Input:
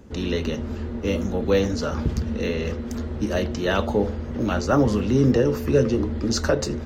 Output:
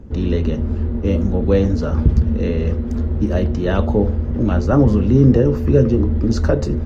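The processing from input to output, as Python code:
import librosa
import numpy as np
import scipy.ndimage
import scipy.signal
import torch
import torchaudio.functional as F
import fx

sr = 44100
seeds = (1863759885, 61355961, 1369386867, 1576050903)

y = fx.tilt_eq(x, sr, slope=-3.0)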